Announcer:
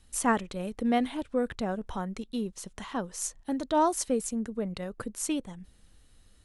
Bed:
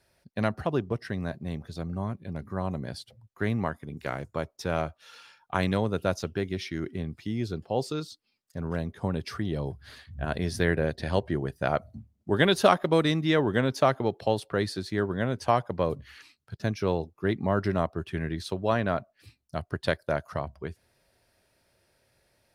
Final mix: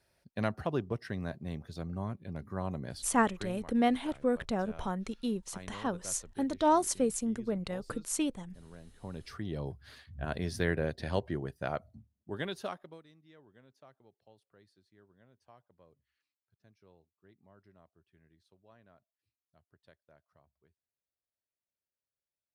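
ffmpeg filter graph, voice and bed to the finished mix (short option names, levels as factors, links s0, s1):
-filter_complex "[0:a]adelay=2900,volume=0.891[s0];[1:a]volume=3.35,afade=t=out:st=3.18:d=0.35:silence=0.158489,afade=t=in:st=8.89:d=0.77:silence=0.16788,afade=t=out:st=11.14:d=1.89:silence=0.0316228[s1];[s0][s1]amix=inputs=2:normalize=0"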